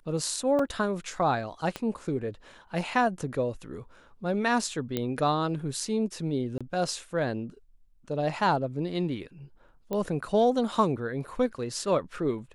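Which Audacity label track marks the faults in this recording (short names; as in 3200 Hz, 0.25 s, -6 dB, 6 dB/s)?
0.590000	0.590000	gap 3.4 ms
1.760000	1.760000	pop -18 dBFS
4.970000	4.970000	pop -15 dBFS
6.580000	6.610000	gap 26 ms
9.930000	9.930000	pop -19 dBFS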